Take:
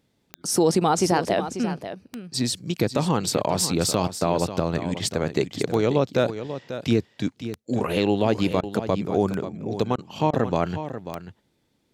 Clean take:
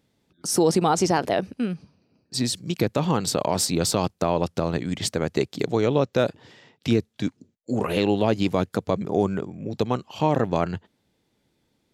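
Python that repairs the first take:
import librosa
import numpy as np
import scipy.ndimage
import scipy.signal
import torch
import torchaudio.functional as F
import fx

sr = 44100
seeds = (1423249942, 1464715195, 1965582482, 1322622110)

y = fx.fix_declick_ar(x, sr, threshold=10.0)
y = fx.fix_interpolate(y, sr, at_s=(8.61, 9.96, 10.31), length_ms=22.0)
y = fx.fix_echo_inverse(y, sr, delay_ms=540, level_db=-11.0)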